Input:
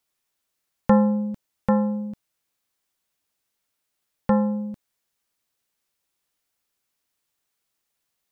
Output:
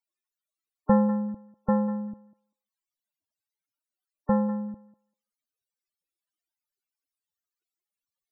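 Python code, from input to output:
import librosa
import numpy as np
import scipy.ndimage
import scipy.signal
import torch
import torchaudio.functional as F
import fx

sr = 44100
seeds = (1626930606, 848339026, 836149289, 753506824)

y = fx.echo_thinned(x, sr, ms=196, feedback_pct=17, hz=550.0, wet_db=-12.0)
y = fx.spec_topn(y, sr, count=32)
y = y * librosa.db_to_amplitude(-3.5)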